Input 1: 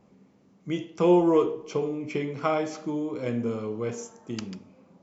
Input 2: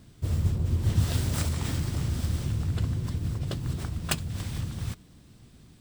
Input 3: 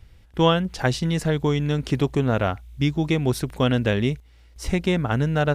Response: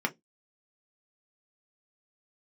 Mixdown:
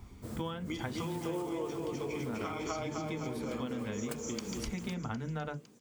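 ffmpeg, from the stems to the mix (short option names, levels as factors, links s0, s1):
-filter_complex "[0:a]highpass=250,highshelf=f=4400:g=9,volume=1.12,asplit=2[s0][s1];[s1]volume=0.531[s2];[1:a]highpass=f=130:w=0.5412,highpass=f=130:w=1.3066,equalizer=f=2900:w=0.79:g=-10.5,volume=0.531,asplit=2[s3][s4];[s4]volume=0.237[s5];[2:a]equalizer=f=110:t=o:w=2.3:g=7.5,volume=0.299,asplit=2[s6][s7];[s7]volume=0.266[s8];[s0][s6]amix=inputs=2:normalize=0,aecho=1:1:0.9:0.65,acompressor=threshold=0.0355:ratio=6,volume=1[s9];[3:a]atrim=start_sample=2205[s10];[s5][s8]amix=inputs=2:normalize=0[s11];[s11][s10]afir=irnorm=-1:irlink=0[s12];[s2]aecho=0:1:253|506|759|1012|1265|1518|1771|2024:1|0.54|0.292|0.157|0.085|0.0459|0.0248|0.0134[s13];[s3][s9][s12][s13]amix=inputs=4:normalize=0,acompressor=threshold=0.02:ratio=6"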